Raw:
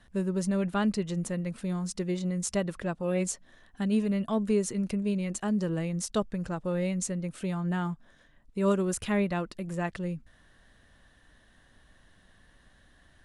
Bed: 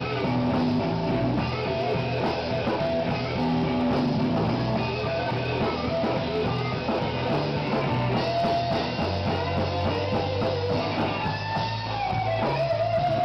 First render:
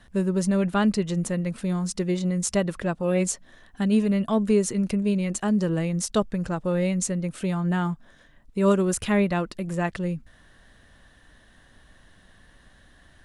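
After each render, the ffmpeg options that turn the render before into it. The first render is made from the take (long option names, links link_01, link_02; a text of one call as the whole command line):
ffmpeg -i in.wav -af "volume=5.5dB" out.wav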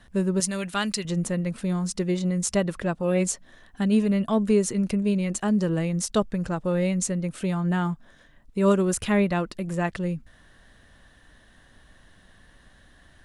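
ffmpeg -i in.wav -filter_complex "[0:a]asettb=1/sr,asplit=3[link_01][link_02][link_03];[link_01]atrim=end=0.404[link_04];[link_02]atrim=start=0.4:end=1.05,asetpts=PTS-STARTPTS,afade=type=in:duration=0.004:curve=qsin,afade=type=out:start_time=0.646:duration=0.004:curve=qsin,tiltshelf=frequency=1400:gain=-9[link_05];[link_03]atrim=start=1.046[link_06];[link_04][link_05]acrossfade=duration=0.004:curve1=hsin:curve2=qsin[link_07];[link_07][link_06]acrossfade=duration=0.004:curve1=qsin:curve2=hsin" out.wav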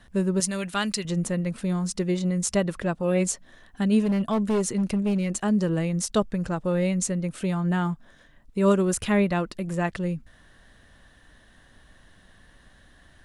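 ffmpeg -i in.wav -filter_complex "[0:a]asettb=1/sr,asplit=3[link_01][link_02][link_03];[link_01]atrim=end=4.004[link_04];[link_02]atrim=start=4:end=5.4,asetpts=PTS-STARTPTS,afade=type=in:duration=0.004:curve=qsin,afade=type=out:start_time=1.396:duration=0.004:curve=qsin,volume=19.5dB,asoftclip=hard,volume=-19.5dB[link_05];[link_03]atrim=start=5.396[link_06];[link_04][link_05]acrossfade=duration=0.004:curve1=hsin:curve2=qsin[link_07];[link_07][link_06]acrossfade=duration=0.004:curve1=qsin:curve2=hsin" out.wav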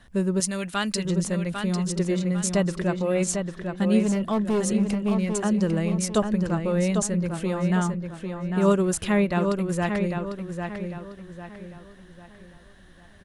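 ffmpeg -i in.wav -filter_complex "[0:a]asplit=2[link_01][link_02];[link_02]adelay=799,lowpass=frequency=4600:poles=1,volume=-5.5dB,asplit=2[link_03][link_04];[link_04]adelay=799,lowpass=frequency=4600:poles=1,volume=0.38,asplit=2[link_05][link_06];[link_06]adelay=799,lowpass=frequency=4600:poles=1,volume=0.38,asplit=2[link_07][link_08];[link_08]adelay=799,lowpass=frequency=4600:poles=1,volume=0.38,asplit=2[link_09][link_10];[link_10]adelay=799,lowpass=frequency=4600:poles=1,volume=0.38[link_11];[link_01][link_03][link_05][link_07][link_09][link_11]amix=inputs=6:normalize=0" out.wav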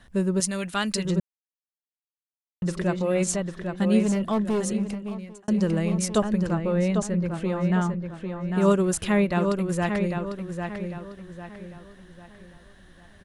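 ffmpeg -i in.wav -filter_complex "[0:a]asettb=1/sr,asplit=3[link_01][link_02][link_03];[link_01]atrim=end=6.534[link_04];[link_02]atrim=start=6.53:end=8.48,asetpts=PTS-STARTPTS,afade=type=in:duration=0.004:curve=qsin,afade=type=out:start_time=1.946:duration=0.004:curve=qsin,aemphasis=mode=reproduction:type=50kf[link_05];[link_03]atrim=start=8.476[link_06];[link_04][link_05]acrossfade=duration=0.004:curve1=hsin:curve2=qsin[link_07];[link_07][link_06]acrossfade=duration=0.004:curve1=qsin:curve2=hsin,asplit=4[link_08][link_09][link_10][link_11];[link_08]atrim=end=1.2,asetpts=PTS-STARTPTS,afade=type=out:start_time=1.196:duration=0.004:curve=hsin[link_12];[link_09]atrim=start=1.2:end=2.62,asetpts=PTS-STARTPTS,volume=0[link_13];[link_10]atrim=start=2.62:end=5.48,asetpts=PTS-STARTPTS,afade=type=in:duration=0.004:curve=hsin,afade=type=out:start_time=1.78:duration=1.08[link_14];[link_11]atrim=start=5.48,asetpts=PTS-STARTPTS,afade=type=in:duration=0.004:curve=hsin[link_15];[link_12][link_13][link_14][link_15]concat=n=4:v=0:a=1" out.wav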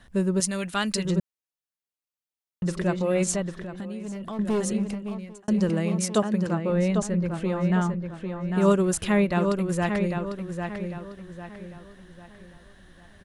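ffmpeg -i in.wav -filter_complex "[0:a]asettb=1/sr,asplit=3[link_01][link_02][link_03];[link_01]atrim=end=3.554[link_04];[link_02]atrim=start=3.55:end=4.39,asetpts=PTS-STARTPTS,afade=type=in:duration=0.004:curve=qsin,afade=type=out:start_time=0.836:duration=0.004:curve=qsin,acompressor=threshold=-31dB:ratio=12:attack=3.2:release=140:knee=1:detection=peak[link_05];[link_03]atrim=start=4.386[link_06];[link_04][link_05]acrossfade=duration=0.004:curve1=hsin:curve2=qsin[link_07];[link_07][link_06]acrossfade=duration=0.004:curve1=qsin:curve2=hsin,asettb=1/sr,asplit=3[link_08][link_09][link_10];[link_08]atrim=end=5.694[link_11];[link_09]atrim=start=5.69:end=6.7,asetpts=PTS-STARTPTS,afade=type=in:duration=0.004:curve=qsin,afade=type=out:start_time=1.006:duration=0.004:curve=qsin,highpass=130[link_12];[link_10]atrim=start=6.696[link_13];[link_11][link_12]acrossfade=duration=0.004:curve1=hsin:curve2=qsin[link_14];[link_14][link_13]acrossfade=duration=0.004:curve1=qsin:curve2=hsin" out.wav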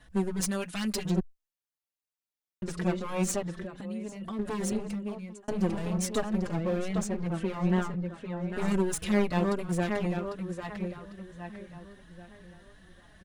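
ffmpeg -i in.wav -filter_complex "[0:a]aeval=exprs='clip(val(0),-1,0.0355)':channel_layout=same,asplit=2[link_01][link_02];[link_02]adelay=4.3,afreqshift=2.9[link_03];[link_01][link_03]amix=inputs=2:normalize=1" out.wav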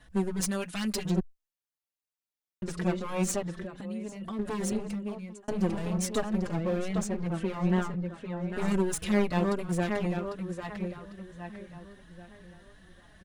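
ffmpeg -i in.wav -af anull out.wav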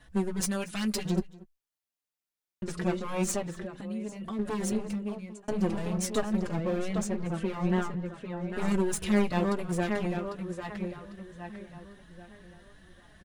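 ffmpeg -i in.wav -filter_complex "[0:a]asplit=2[link_01][link_02];[link_02]adelay=14,volume=-13.5dB[link_03];[link_01][link_03]amix=inputs=2:normalize=0,aecho=1:1:235:0.0794" out.wav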